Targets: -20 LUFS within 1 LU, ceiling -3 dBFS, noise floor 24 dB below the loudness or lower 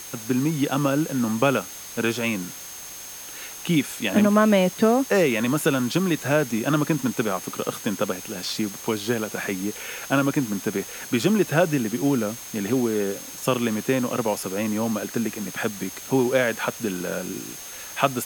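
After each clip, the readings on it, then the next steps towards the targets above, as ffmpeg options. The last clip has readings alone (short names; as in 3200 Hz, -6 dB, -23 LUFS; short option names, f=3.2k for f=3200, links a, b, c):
steady tone 6400 Hz; tone level -40 dBFS; noise floor -38 dBFS; noise floor target -48 dBFS; loudness -24.0 LUFS; peak -3.0 dBFS; loudness target -20.0 LUFS
-> -af "bandreject=f=6.4k:w=30"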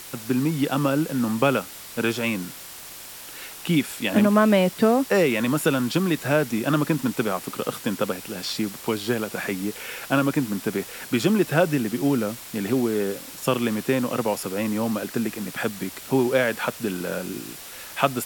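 steady tone none; noise floor -40 dBFS; noise floor target -48 dBFS
-> -af "afftdn=nr=8:nf=-40"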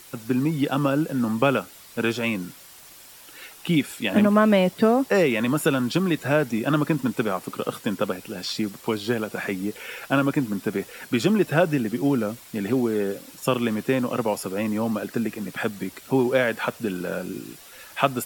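noise floor -47 dBFS; noise floor target -48 dBFS
-> -af "afftdn=nr=6:nf=-47"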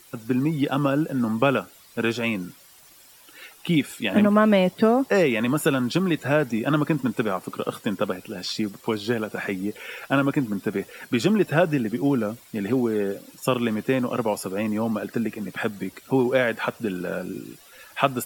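noise floor -51 dBFS; loudness -24.0 LUFS; peak -3.0 dBFS; loudness target -20.0 LUFS
-> -af "volume=4dB,alimiter=limit=-3dB:level=0:latency=1"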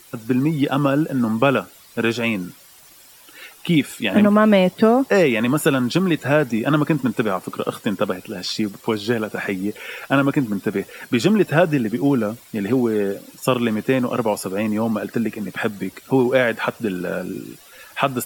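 loudness -20.0 LUFS; peak -3.0 dBFS; noise floor -47 dBFS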